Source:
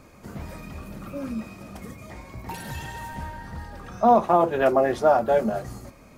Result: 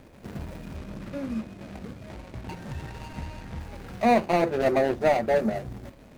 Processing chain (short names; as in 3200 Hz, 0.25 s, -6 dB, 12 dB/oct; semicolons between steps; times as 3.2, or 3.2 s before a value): median filter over 41 samples; 0.76–3.6 high shelf 12000 Hz -9.5 dB; mismatched tape noise reduction encoder only